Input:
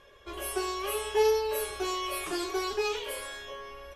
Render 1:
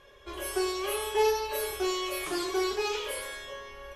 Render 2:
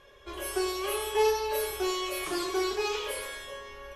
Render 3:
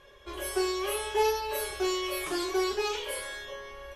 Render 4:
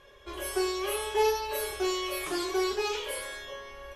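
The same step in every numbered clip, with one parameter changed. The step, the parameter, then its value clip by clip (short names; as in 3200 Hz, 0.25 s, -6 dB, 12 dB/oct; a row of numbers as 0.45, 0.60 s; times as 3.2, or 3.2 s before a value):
non-linear reverb, gate: 260, 410, 90, 150 ms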